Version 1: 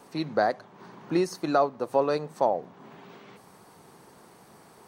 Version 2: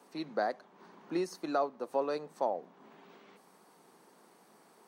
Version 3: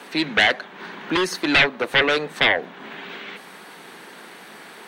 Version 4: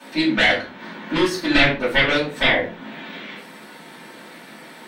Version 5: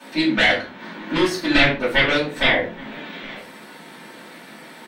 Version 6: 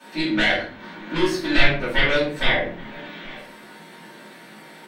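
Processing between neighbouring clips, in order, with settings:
high-pass 190 Hz 24 dB/octave; trim -8 dB
sine folder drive 13 dB, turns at -18 dBFS; high-order bell 2.4 kHz +11 dB
reverberation RT60 0.35 s, pre-delay 3 ms, DRR -9.5 dB; trim -11.5 dB
echo from a far wall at 140 m, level -21 dB
simulated room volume 30 m³, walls mixed, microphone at 0.46 m; trim -5 dB

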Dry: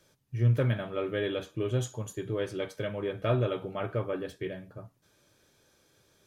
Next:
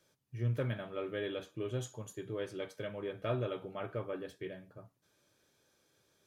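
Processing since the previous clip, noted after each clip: bass shelf 78 Hz -9.5 dB; trim -6.5 dB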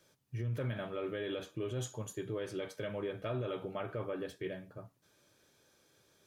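peak limiter -33 dBFS, peak gain reduction 9.5 dB; trim +4 dB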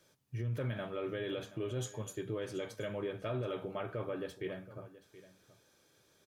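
delay 726 ms -17 dB

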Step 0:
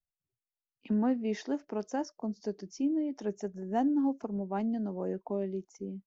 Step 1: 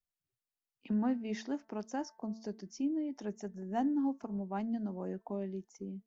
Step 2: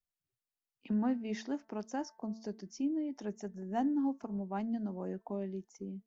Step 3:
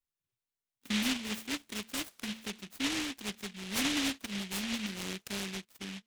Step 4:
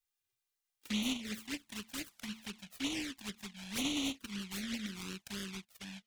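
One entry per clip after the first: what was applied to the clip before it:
de-hum 222.2 Hz, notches 9; dynamic bell 460 Hz, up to -6 dB, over -45 dBFS, Q 1.6; trim -2 dB
no audible change
delay time shaken by noise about 2.7 kHz, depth 0.47 ms
touch-sensitive flanger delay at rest 2.5 ms, full sweep at -29.5 dBFS; tape noise reduction on one side only encoder only; trim -2.5 dB

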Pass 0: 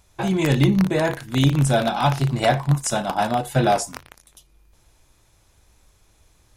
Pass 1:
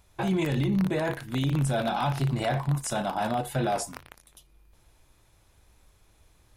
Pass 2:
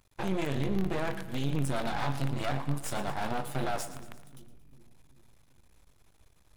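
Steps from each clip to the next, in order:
peak limiter -16 dBFS, peak gain reduction 10.5 dB; peaking EQ 6.4 kHz -5 dB 0.88 oct; trim -2.5 dB
half-wave rectifier; two-band feedback delay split 350 Hz, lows 389 ms, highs 114 ms, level -14 dB; trim -1 dB

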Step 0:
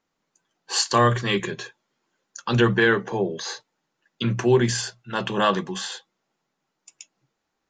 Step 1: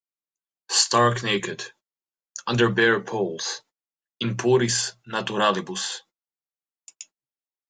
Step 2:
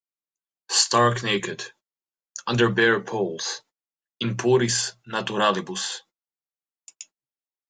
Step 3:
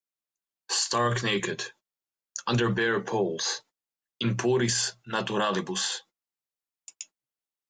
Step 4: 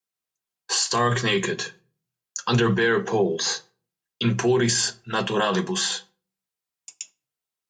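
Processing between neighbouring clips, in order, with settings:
gate -51 dBFS, range -30 dB; tone controls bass -4 dB, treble +5 dB
no audible change
peak limiter -16.5 dBFS, peak gain reduction 11 dB
wow and flutter 17 cents; comb of notches 290 Hz; simulated room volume 290 m³, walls furnished, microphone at 0.35 m; trim +5.5 dB

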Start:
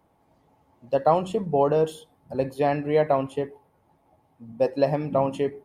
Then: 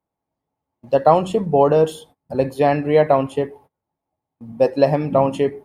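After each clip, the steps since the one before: gate -51 dBFS, range -25 dB; trim +6.5 dB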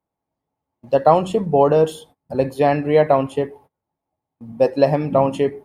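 no audible change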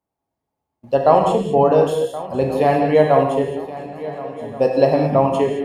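shuffle delay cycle 1431 ms, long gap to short 3:1, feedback 39%, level -16 dB; gated-style reverb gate 240 ms flat, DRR 2 dB; trim -1 dB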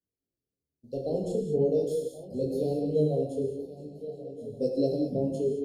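elliptic band-stop 470–4400 Hz, stop band 80 dB; detune thickener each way 15 cents; trim -4.5 dB

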